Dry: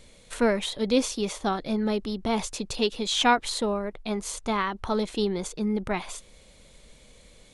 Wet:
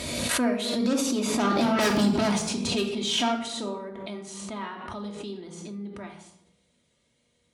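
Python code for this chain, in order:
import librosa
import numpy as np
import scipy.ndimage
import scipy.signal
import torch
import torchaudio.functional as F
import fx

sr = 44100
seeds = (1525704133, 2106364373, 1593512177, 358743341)

p1 = fx.doppler_pass(x, sr, speed_mps=16, closest_m=2.0, pass_at_s=1.86)
p2 = fx.fold_sine(p1, sr, drive_db=18, ceiling_db=-16.0)
p3 = p1 + (p2 * librosa.db_to_amplitude(-7.5))
p4 = scipy.signal.sosfilt(scipy.signal.butter(4, 71.0, 'highpass', fs=sr, output='sos'), p3)
p5 = fx.comb_fb(p4, sr, f0_hz=240.0, decay_s=0.31, harmonics='all', damping=0.0, mix_pct=70)
p6 = fx.room_shoebox(p5, sr, seeds[0], volume_m3=1900.0, walls='furnished', distance_m=2.8)
p7 = fx.pre_swell(p6, sr, db_per_s=29.0)
y = p7 * librosa.db_to_amplitude(7.0)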